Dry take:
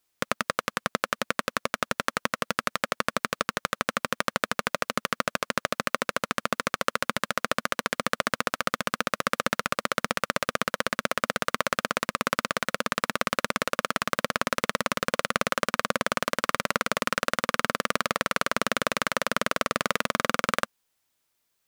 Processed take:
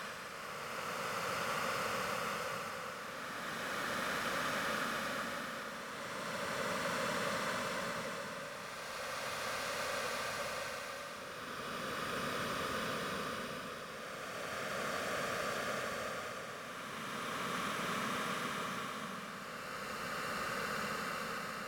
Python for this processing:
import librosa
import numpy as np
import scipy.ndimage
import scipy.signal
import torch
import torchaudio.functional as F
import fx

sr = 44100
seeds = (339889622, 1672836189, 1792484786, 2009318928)

y = fx.doppler_pass(x, sr, speed_mps=8, closest_m=6.7, pass_at_s=7.5)
y = fx.paulstretch(y, sr, seeds[0], factor=42.0, window_s=0.1, from_s=10.08)